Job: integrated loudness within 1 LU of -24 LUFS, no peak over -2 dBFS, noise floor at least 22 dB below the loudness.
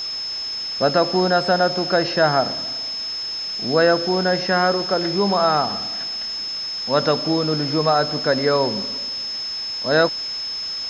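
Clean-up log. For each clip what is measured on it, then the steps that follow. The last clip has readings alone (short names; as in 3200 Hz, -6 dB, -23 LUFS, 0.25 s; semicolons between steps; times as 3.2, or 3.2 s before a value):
steady tone 5200 Hz; tone level -25 dBFS; noise floor -28 dBFS; noise floor target -42 dBFS; loudness -20.0 LUFS; peak -4.0 dBFS; loudness target -24.0 LUFS
-> notch 5200 Hz, Q 30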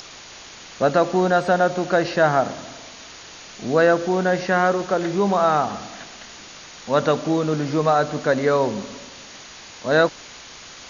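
steady tone none; noise floor -41 dBFS; noise floor target -42 dBFS
-> noise print and reduce 6 dB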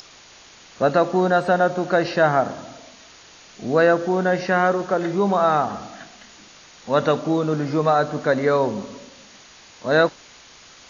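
noise floor -47 dBFS; loudness -20.0 LUFS; peak -4.5 dBFS; loudness target -24.0 LUFS
-> gain -4 dB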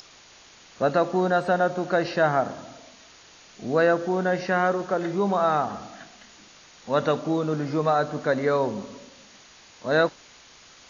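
loudness -24.0 LUFS; peak -8.5 dBFS; noise floor -51 dBFS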